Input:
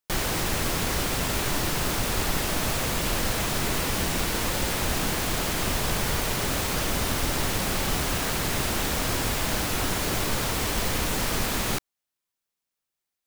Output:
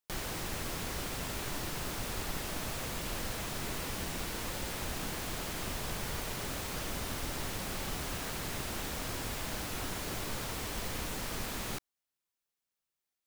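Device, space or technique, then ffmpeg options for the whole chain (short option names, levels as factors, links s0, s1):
de-esser from a sidechain: -filter_complex "[0:a]asplit=2[s0][s1];[s1]highpass=4700,apad=whole_len=584819[s2];[s0][s2]sidechaincompress=threshold=0.0141:ratio=6:attack=2.2:release=36,volume=0.631"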